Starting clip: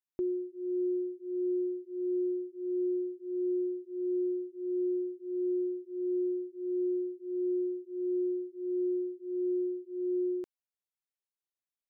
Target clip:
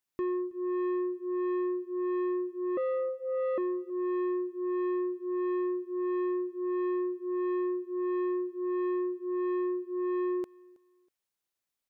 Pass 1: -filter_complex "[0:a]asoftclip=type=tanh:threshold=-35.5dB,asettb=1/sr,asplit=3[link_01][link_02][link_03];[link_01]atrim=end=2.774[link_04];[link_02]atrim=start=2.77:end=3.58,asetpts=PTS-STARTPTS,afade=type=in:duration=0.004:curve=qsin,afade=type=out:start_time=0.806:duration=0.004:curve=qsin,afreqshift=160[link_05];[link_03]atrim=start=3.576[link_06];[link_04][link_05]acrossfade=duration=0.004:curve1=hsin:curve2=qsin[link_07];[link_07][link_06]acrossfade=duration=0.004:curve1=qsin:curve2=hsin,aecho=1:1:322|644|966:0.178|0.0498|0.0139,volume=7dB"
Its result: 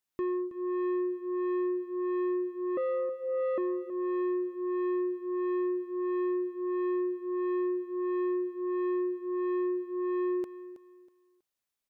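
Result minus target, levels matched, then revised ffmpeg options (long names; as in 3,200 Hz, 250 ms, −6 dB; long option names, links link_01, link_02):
echo-to-direct +10.5 dB
-filter_complex "[0:a]asoftclip=type=tanh:threshold=-35.5dB,asettb=1/sr,asplit=3[link_01][link_02][link_03];[link_01]atrim=end=2.774[link_04];[link_02]atrim=start=2.77:end=3.58,asetpts=PTS-STARTPTS,afade=type=in:duration=0.004:curve=qsin,afade=type=out:start_time=0.806:duration=0.004:curve=qsin,afreqshift=160[link_05];[link_03]atrim=start=3.576[link_06];[link_04][link_05]acrossfade=duration=0.004:curve1=hsin:curve2=qsin[link_07];[link_07][link_06]acrossfade=duration=0.004:curve1=qsin:curve2=hsin,aecho=1:1:322|644:0.0531|0.0149,volume=7dB"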